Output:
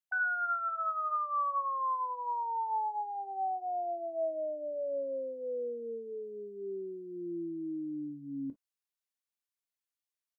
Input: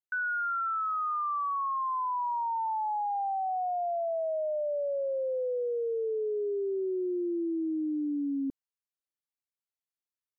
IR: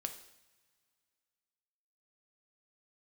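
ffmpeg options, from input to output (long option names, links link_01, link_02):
-filter_complex "[0:a]asplit=2[link_01][link_02];[link_02]asetrate=22050,aresample=44100,atempo=2,volume=-16dB[link_03];[link_01][link_03]amix=inputs=2:normalize=0,tiltshelf=frequency=660:gain=-5.5[link_04];[1:a]atrim=start_sample=2205,atrim=end_sample=3969,asetrate=66150,aresample=44100[link_05];[link_04][link_05]afir=irnorm=-1:irlink=0"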